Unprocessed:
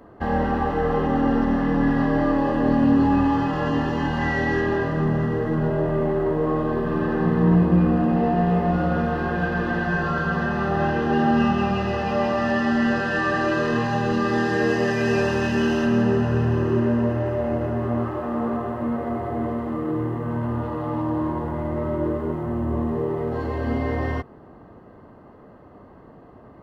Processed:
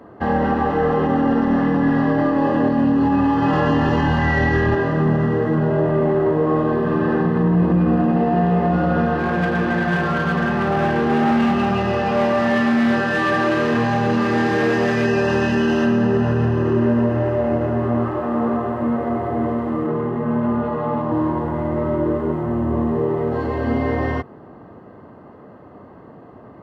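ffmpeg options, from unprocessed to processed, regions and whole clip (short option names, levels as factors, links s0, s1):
-filter_complex "[0:a]asettb=1/sr,asplit=3[s0][s1][s2];[s0]atrim=end=3.424[s3];[s1]atrim=start=3.42:end=4.75,asetpts=PTS-STARTPTS,afade=t=in:d=0.004:c=qsin,afade=t=out:st=1.326:d=0.004:c=qsin,asubboost=boost=10.5:cutoff=120,acontrast=32[s4];[s2]atrim=start=4.746[s5];[s3][s4]acrossfade=d=0.004:c1=hsin:c2=qsin[s6];[s6][s5]acrossfade=d=0.004:c1=qsin:c2=hsin,asettb=1/sr,asplit=3[s7][s8][s9];[s7]atrim=end=9.194[s10];[s8]atrim=start=9.19:end=15.05,asetpts=PTS-STARTPTS,afade=t=in:d=0.004:c=qsin,afade=t=out:st=5.856:d=0.004:c=qsin,asoftclip=type=hard:threshold=0.1,asplit=2[s11][s12];[s12]adelay=34,volume=0.251[s13];[s11][s13]amix=inputs=2:normalize=0,atrim=end_sample=258426[s14];[s9]atrim=start=15.046[s15];[s10][s14]acrossfade=d=0.004:c1=hsin:c2=qsin[s16];[s16][s15]acrossfade=d=0.004:c1=qsin:c2=hsin,asettb=1/sr,asplit=3[s17][s18][s19];[s17]atrim=end=19.874[s20];[s18]atrim=start=19.87:end=21.12,asetpts=PTS-STARTPTS,afade=t=in:d=0.004:c=qsin,afade=t=out:st=1.246:d=0.004:c=qsin,lowpass=f=3400:p=1,aecho=1:1:4.8:0.69,atrim=end_sample=55125[s21];[s19]atrim=start=21.116[s22];[s20][s21]acrossfade=d=0.004:c1=hsin:c2=qsin[s23];[s23][s22]acrossfade=d=0.004:c1=qsin:c2=hsin,highpass=88,highshelf=f=5200:g=-7,alimiter=level_in=4.73:limit=0.891:release=50:level=0:latency=1,volume=0.376"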